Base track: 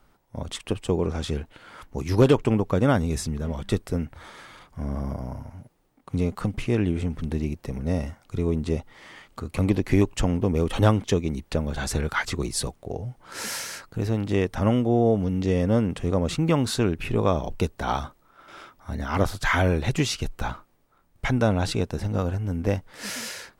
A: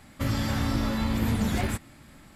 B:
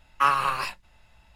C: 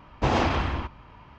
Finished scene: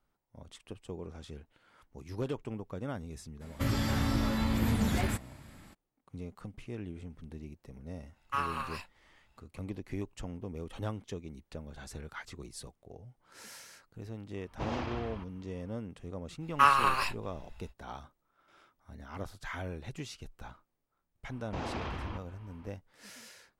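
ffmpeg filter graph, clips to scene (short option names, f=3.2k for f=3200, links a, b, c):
-filter_complex "[2:a]asplit=2[a][b];[3:a]asplit=2[c][d];[0:a]volume=-18dB[e];[b]asubboost=boost=5.5:cutoff=77[f];[d]alimiter=limit=-20dB:level=0:latency=1:release=69[g];[1:a]atrim=end=2.35,asetpts=PTS-STARTPTS,volume=-3dB,afade=t=in:d=0.02,afade=t=out:st=2.33:d=0.02,adelay=3400[h];[a]atrim=end=1.35,asetpts=PTS-STARTPTS,volume=-12dB,afade=t=in:d=0.05,afade=t=out:st=1.3:d=0.05,adelay=8120[i];[c]atrim=end=1.38,asetpts=PTS-STARTPTS,volume=-14dB,afade=t=in:d=0.004:c=hsin,afade=t=out:st=1.376:d=0.004:c=hsin,adelay=14370[j];[f]atrim=end=1.35,asetpts=PTS-STARTPTS,volume=-1.5dB,afade=t=in:d=0.05,afade=t=out:st=1.3:d=0.05,adelay=16390[k];[g]atrim=end=1.38,asetpts=PTS-STARTPTS,volume=-9dB,afade=t=in:d=0.004:c=hsin,afade=t=out:st=1.376:d=0.004:c=hsin,adelay=21310[l];[e][h][i][j][k][l]amix=inputs=6:normalize=0"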